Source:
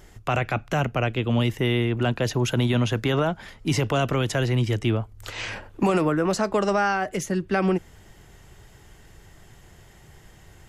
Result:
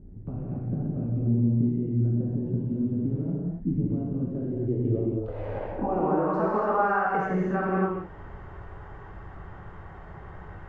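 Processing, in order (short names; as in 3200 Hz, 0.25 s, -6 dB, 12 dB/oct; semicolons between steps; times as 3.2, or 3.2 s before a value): compressor 6:1, threshold -31 dBFS, peak gain reduction 13 dB; low-pass sweep 240 Hz -> 1200 Hz, 4.18–6.48; non-linear reverb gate 0.32 s flat, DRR -6 dB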